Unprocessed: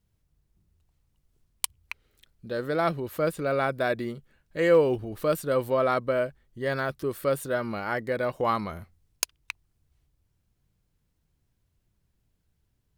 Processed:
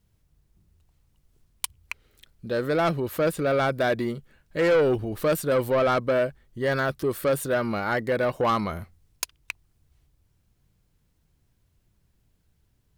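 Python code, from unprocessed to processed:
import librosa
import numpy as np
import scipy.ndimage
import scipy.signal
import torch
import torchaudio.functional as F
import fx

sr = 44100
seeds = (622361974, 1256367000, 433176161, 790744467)

y = 10.0 ** (-22.0 / 20.0) * np.tanh(x / 10.0 ** (-22.0 / 20.0))
y = y * librosa.db_to_amplitude(5.5)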